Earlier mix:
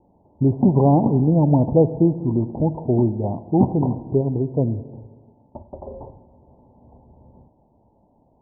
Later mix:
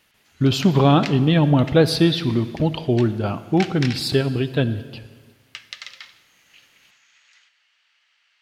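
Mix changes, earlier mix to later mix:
background: add flat-topped band-pass 3,200 Hz, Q 0.94
master: remove Butterworth low-pass 960 Hz 96 dB per octave

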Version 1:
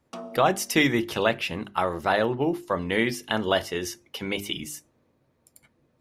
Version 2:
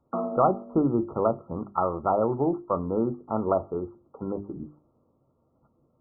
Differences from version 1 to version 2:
background +9.0 dB
master: add linear-phase brick-wall low-pass 1,400 Hz

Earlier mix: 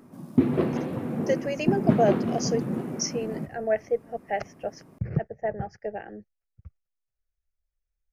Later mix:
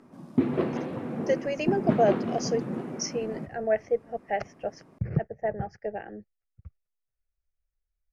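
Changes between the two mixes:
background: add low-shelf EQ 230 Hz −7 dB
master: add high-frequency loss of the air 58 metres

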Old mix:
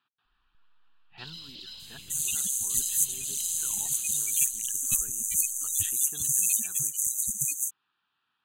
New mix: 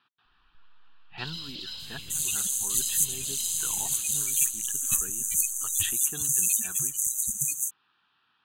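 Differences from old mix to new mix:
speech +8.5 dB
first sound +3.5 dB
reverb: on, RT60 0.30 s

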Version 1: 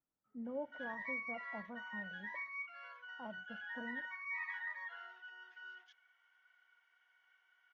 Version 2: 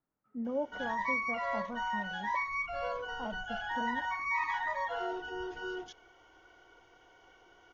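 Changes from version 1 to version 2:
speech +8.0 dB
background: remove four-pole ladder band-pass 2,000 Hz, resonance 50%

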